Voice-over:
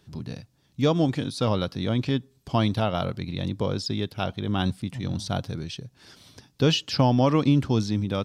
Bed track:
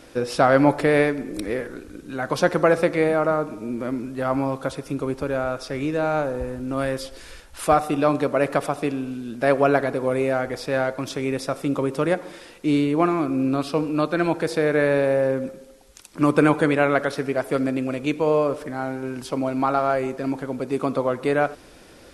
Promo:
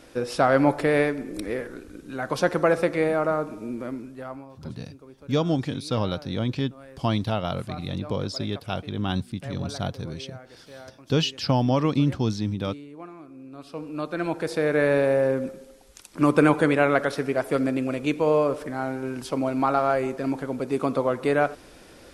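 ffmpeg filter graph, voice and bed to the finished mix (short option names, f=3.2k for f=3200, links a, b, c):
-filter_complex "[0:a]adelay=4500,volume=-1.5dB[a];[1:a]volume=17.5dB,afade=t=out:st=3.65:d=0.81:silence=0.11885,afade=t=in:st=13.51:d=1.41:silence=0.0944061[b];[a][b]amix=inputs=2:normalize=0"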